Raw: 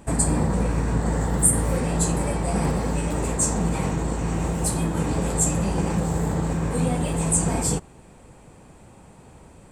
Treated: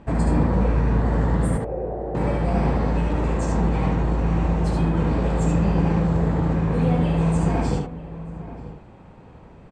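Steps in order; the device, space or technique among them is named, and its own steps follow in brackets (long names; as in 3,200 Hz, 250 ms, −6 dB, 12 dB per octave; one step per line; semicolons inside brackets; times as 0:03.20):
0:01.57–0:02.15: elliptic band-pass filter 340–770 Hz
shout across a valley (high-frequency loss of the air 230 metres; slap from a distant wall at 160 metres, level −14 dB)
single-tap delay 73 ms −3.5 dB
level +1 dB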